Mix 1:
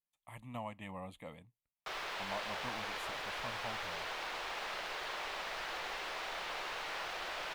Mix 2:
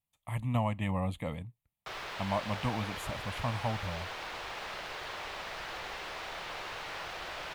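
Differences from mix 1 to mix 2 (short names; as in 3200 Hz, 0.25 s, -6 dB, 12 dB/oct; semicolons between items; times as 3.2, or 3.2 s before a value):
speech +9.0 dB; master: add bell 84 Hz +12 dB 2.2 oct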